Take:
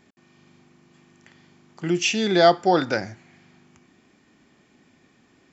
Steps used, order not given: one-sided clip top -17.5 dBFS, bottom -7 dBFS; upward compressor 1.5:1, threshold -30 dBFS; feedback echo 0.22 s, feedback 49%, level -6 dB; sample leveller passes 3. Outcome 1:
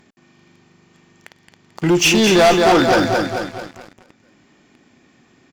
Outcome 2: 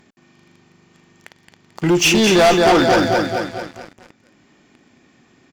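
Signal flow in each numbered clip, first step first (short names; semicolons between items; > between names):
one-sided clip > feedback echo > sample leveller > upward compressor; feedback echo > one-sided clip > sample leveller > upward compressor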